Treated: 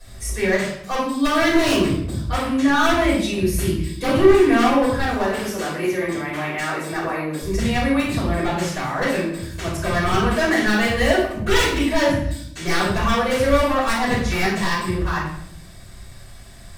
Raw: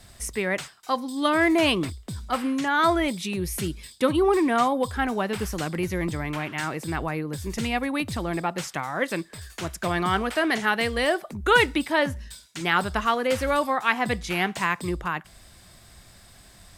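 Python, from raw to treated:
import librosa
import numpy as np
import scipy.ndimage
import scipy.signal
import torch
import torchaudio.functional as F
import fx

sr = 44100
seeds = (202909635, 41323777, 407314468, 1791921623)

y = fx.highpass(x, sr, hz=290.0, slope=12, at=(4.98, 7.42))
y = 10.0 ** (-18.0 / 20.0) * (np.abs((y / 10.0 ** (-18.0 / 20.0) + 3.0) % 4.0 - 2.0) - 1.0)
y = fx.room_shoebox(y, sr, seeds[0], volume_m3=160.0, walls='mixed', distance_m=5.4)
y = y * 10.0 ** (-9.5 / 20.0)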